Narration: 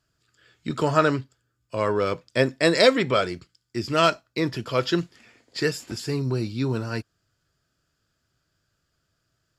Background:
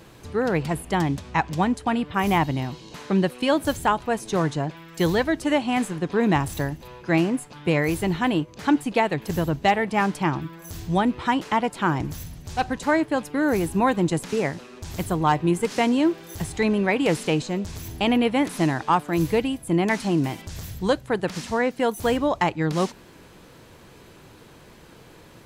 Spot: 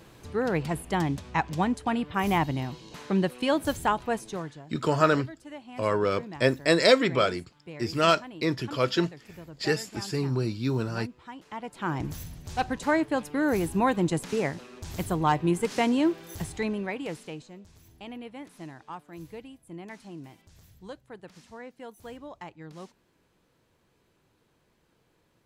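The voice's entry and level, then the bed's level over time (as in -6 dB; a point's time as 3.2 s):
4.05 s, -2.0 dB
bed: 4.16 s -4 dB
4.64 s -21 dB
11.36 s -21 dB
12.05 s -3.5 dB
16.33 s -3.5 dB
17.59 s -20.5 dB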